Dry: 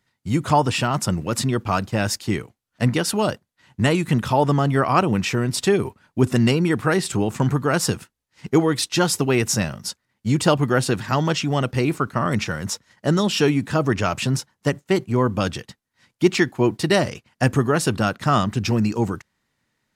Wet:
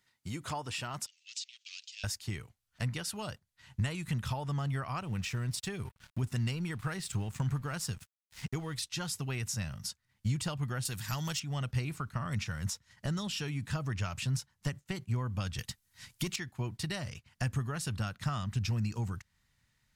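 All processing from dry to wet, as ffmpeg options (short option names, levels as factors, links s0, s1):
-filter_complex "[0:a]asettb=1/sr,asplit=3[s0][s1][s2];[s0]atrim=end=1.064[s3];[s1]atrim=start=1.06:end=2.04,asetpts=PTS-STARTPTS,afade=t=in:d=0.004:c=qsin,afade=t=out:st=0.976:d=0.004:c=qsin,acompressor=threshold=0.0794:ratio=3:attack=3.2:release=140:knee=1:detection=peak,asoftclip=type=hard:threshold=0.075,asuperpass=centerf=4400:order=8:qfactor=0.99[s4];[s2]atrim=start=2.036[s5];[s3][s4]acrossfade=d=0.004:c1=hsin:c2=qsin[s6];[s6][s5]acrossfade=d=0.004:c1=qsin:c2=hsin,asettb=1/sr,asplit=3[s7][s8][s9];[s7]atrim=end=5.034[s10];[s8]atrim=start=5.03:end=8.77,asetpts=PTS-STARTPTS,afade=t=in:d=0.004:c=qsin,afade=t=out:st=3.736:d=0.004:c=qsin,acompressor=mode=upward:threshold=0.0355:ratio=2.5:attack=3.2:release=140:knee=2.83:detection=peak,aeval=exprs='sgn(val(0))*max(abs(val(0))-0.00708,0)':c=same[s11];[s9]atrim=start=8.766[s12];[s10][s11]acrossfade=d=0.004:c1=hsin:c2=qsin[s13];[s13][s12]acrossfade=d=0.004:c1=qsin:c2=hsin,asettb=1/sr,asplit=3[s14][s15][s16];[s14]atrim=end=10.854[s17];[s15]atrim=start=10.85:end=11.4,asetpts=PTS-STARTPTS,afade=t=in:d=0.004:c=qsin,afade=t=out:st=0.546:d=0.004:c=qsin,aemphasis=mode=production:type=75fm,asoftclip=type=hard:threshold=0.282[s18];[s16]atrim=start=11.396[s19];[s17][s18]acrossfade=d=0.004:c1=hsin:c2=qsin[s20];[s20][s19]acrossfade=d=0.004:c1=qsin:c2=hsin,asettb=1/sr,asplit=3[s21][s22][s23];[s21]atrim=end=15.584[s24];[s22]atrim=start=15.58:end=16.36,asetpts=PTS-STARTPTS,afade=t=in:d=0.004:c=qsin,afade=t=out:st=0.776:d=0.004:c=qsin,aemphasis=mode=production:type=cd,acontrast=65[s25];[s23]atrim=start=16.356[s26];[s24][s25]acrossfade=d=0.004:c1=hsin:c2=qsin[s27];[s27][s26]acrossfade=d=0.004:c1=qsin:c2=hsin,tiltshelf=f=1200:g=-4.5,acompressor=threshold=0.0178:ratio=3,asubboost=boost=9:cutoff=110,volume=0.596"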